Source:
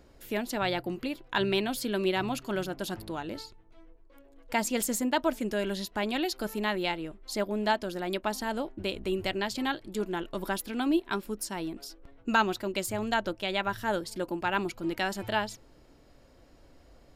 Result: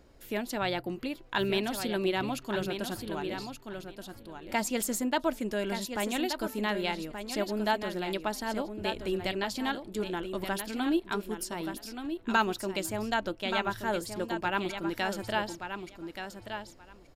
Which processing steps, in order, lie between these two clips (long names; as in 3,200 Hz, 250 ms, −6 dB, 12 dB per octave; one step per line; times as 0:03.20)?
repeating echo 1,177 ms, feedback 15%, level −8 dB
level −1.5 dB